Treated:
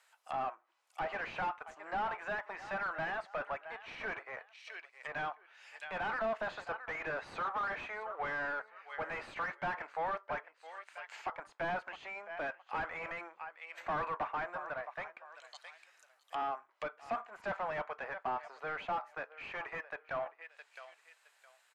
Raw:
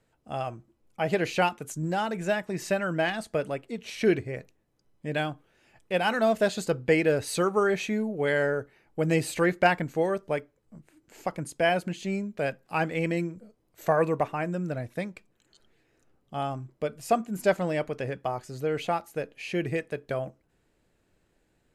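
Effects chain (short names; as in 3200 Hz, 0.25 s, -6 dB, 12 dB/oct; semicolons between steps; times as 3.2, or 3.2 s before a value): in parallel at -5 dB: crossover distortion -36.5 dBFS; on the sum: HPF 890 Hz 24 dB/oct; on a send: feedback echo 0.664 s, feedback 24%, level -22.5 dB; on the sum: soft clip -38.5 dBFS, distortion -2 dB; treble ducked by the level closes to 1300 Hz, closed at -47 dBFS; gain +8 dB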